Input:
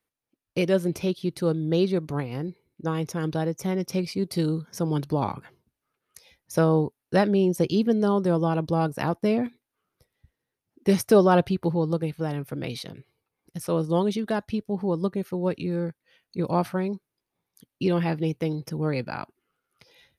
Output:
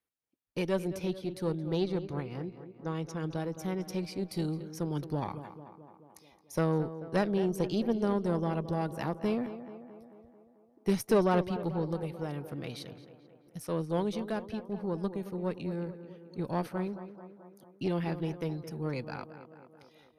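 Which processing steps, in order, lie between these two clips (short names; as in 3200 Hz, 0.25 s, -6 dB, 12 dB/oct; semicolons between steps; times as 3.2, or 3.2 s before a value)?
1.78–3.37 LPF 7800 Hz 12 dB/oct; tape echo 0.219 s, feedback 67%, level -11 dB, low-pass 2200 Hz; added harmonics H 4 -19 dB, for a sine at -7.5 dBFS; gain -8 dB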